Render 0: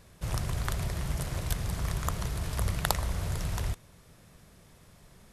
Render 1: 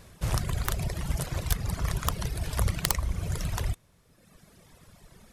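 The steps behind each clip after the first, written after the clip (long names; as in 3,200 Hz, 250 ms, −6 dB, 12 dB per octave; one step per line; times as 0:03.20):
reverb reduction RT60 1.5 s
wrap-around overflow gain 13.5 dB
level +5 dB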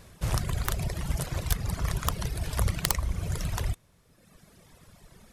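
no processing that can be heard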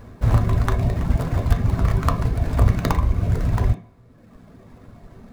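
running median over 15 samples
on a send at −4 dB: convolution reverb RT60 0.45 s, pre-delay 3 ms
on the sum: level +8 dB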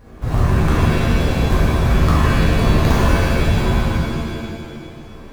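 reverb with rising layers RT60 1.9 s, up +7 semitones, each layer −2 dB, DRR −8 dB
level −4.5 dB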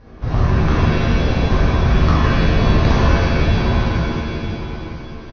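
Butterworth low-pass 6,100 Hz 96 dB per octave
single-tap delay 957 ms −11.5 dB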